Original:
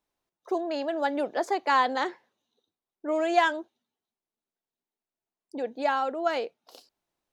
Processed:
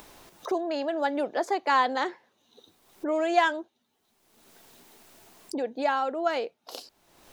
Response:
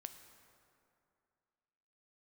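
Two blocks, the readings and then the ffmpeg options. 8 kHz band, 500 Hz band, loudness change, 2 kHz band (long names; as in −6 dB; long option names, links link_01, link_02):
+2.5 dB, +0.5 dB, 0.0 dB, 0.0 dB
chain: -af "acompressor=mode=upward:threshold=-26dB:ratio=2.5"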